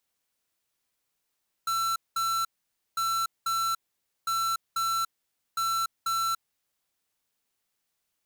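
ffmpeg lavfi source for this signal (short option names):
-f lavfi -i "aevalsrc='0.0422*(2*lt(mod(1340*t,1),0.5)-1)*clip(min(mod(mod(t,1.3),0.49),0.29-mod(mod(t,1.3),0.49))/0.005,0,1)*lt(mod(t,1.3),0.98)':d=5.2:s=44100"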